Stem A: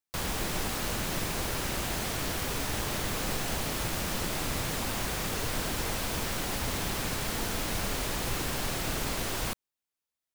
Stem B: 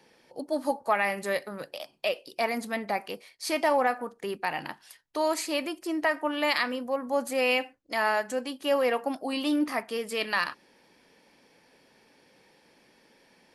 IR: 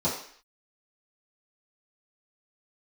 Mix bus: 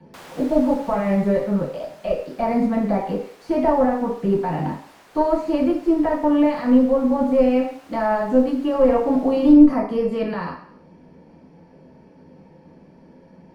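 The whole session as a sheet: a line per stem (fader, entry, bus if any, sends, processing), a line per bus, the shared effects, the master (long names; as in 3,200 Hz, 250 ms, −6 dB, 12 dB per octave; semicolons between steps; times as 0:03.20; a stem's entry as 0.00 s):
−1.0 dB, 0.00 s, no send, Bessel high-pass filter 760 Hz, order 2; automatic ducking −11 dB, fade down 1.70 s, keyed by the second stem
−2.0 dB, 0.00 s, send −4 dB, brickwall limiter −20.5 dBFS, peak gain reduction 9 dB; de-essing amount 90%; parametric band 3,600 Hz −7.5 dB 0.41 octaves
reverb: on, RT60 0.55 s, pre-delay 3 ms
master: harmonic generator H 2 −19 dB, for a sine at −8 dBFS; spectral tilt −3.5 dB per octave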